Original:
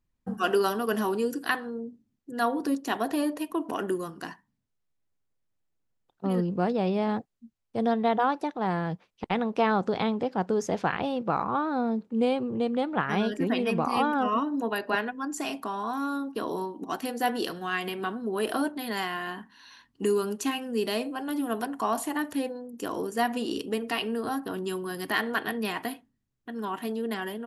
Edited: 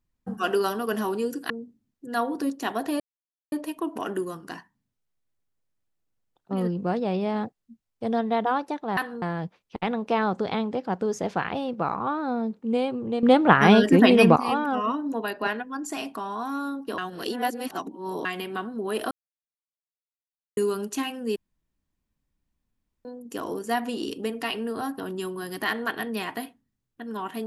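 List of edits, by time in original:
1.5–1.75 move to 8.7
3.25 insert silence 0.52 s
12.71–13.84 gain +11 dB
16.46–17.73 reverse
18.59–20.05 mute
20.84–22.53 room tone

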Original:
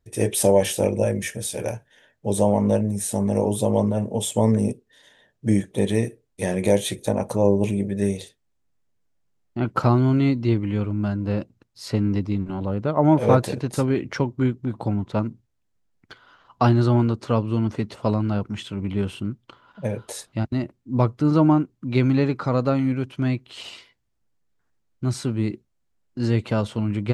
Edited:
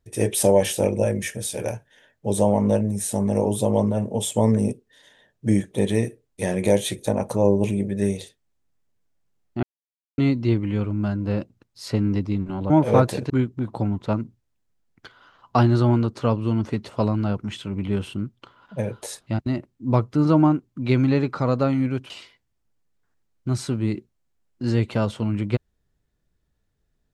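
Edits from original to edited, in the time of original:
9.63–10.18 mute
12.7–13.05 cut
13.65–14.36 cut
23.16–23.66 cut

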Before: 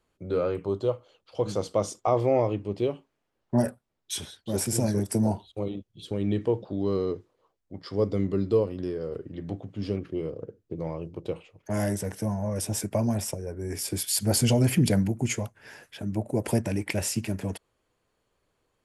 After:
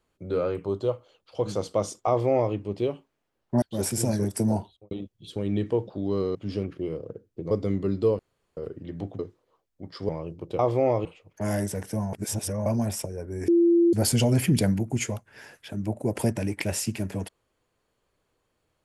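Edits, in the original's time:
2.08–2.54 copy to 11.34
3.62–4.37 cut
5.36–5.66 studio fade out
7.1–8 swap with 9.68–10.84
8.68–9.06 room tone
12.42–12.95 reverse
13.77–14.22 bleep 341 Hz -15.5 dBFS

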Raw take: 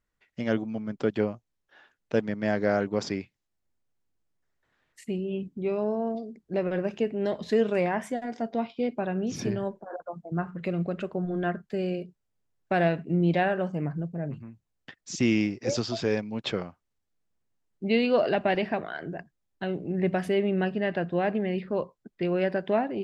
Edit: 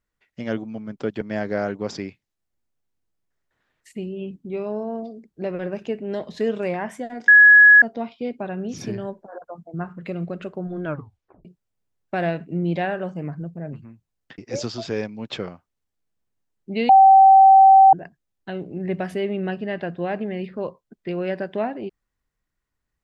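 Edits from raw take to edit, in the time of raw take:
1.21–2.33 cut
8.4 add tone 1680 Hz -6.5 dBFS 0.54 s
11.41 tape stop 0.62 s
14.96–15.52 cut
18.03–19.07 bleep 773 Hz -7 dBFS

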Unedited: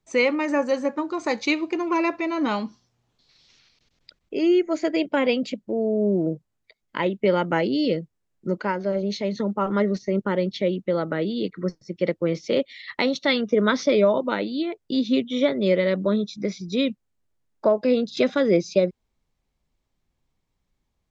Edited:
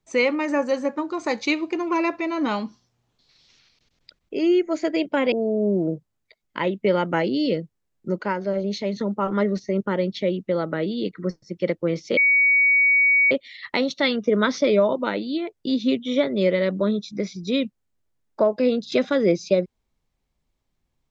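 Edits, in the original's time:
5.32–5.71 cut
12.56 add tone 2250 Hz -14 dBFS 1.14 s

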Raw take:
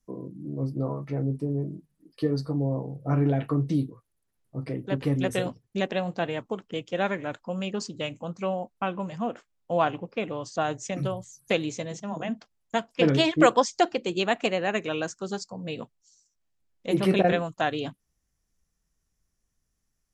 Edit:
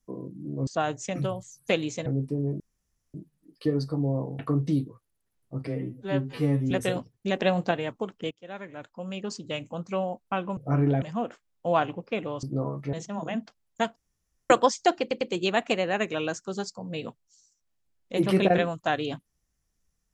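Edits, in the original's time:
0.67–1.17 swap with 10.48–11.87
1.71 insert room tone 0.54 s
2.96–3.41 move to 9.07
4.69–5.21 stretch 2×
5.86–6.21 gain +4.5 dB
6.81–8.18 fade in, from -23 dB
12.9–13.44 room tone
13.95 stutter 0.10 s, 3 plays

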